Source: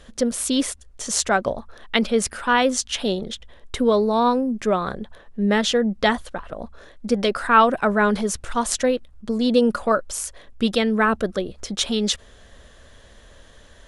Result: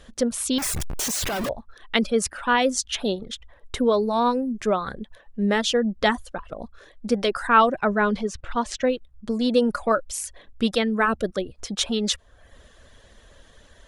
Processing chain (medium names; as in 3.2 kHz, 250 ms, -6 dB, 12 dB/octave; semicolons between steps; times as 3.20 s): 0.58–1.49 s: one-bit comparator; reverb removal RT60 0.59 s; 7.69–8.87 s: distance through air 110 m; trim -1.5 dB